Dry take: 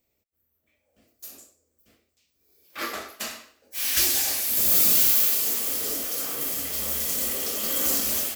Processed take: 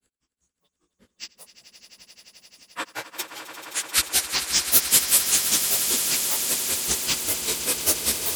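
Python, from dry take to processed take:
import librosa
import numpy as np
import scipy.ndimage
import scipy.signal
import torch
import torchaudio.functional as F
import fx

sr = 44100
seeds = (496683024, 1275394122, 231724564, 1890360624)

y = fx.partial_stretch(x, sr, pct=90)
y = fx.granulator(y, sr, seeds[0], grain_ms=108.0, per_s=5.1, spray_ms=19.0, spread_st=12)
y = fx.echo_swell(y, sr, ms=87, loudest=8, wet_db=-13)
y = y * librosa.db_to_amplitude(8.5)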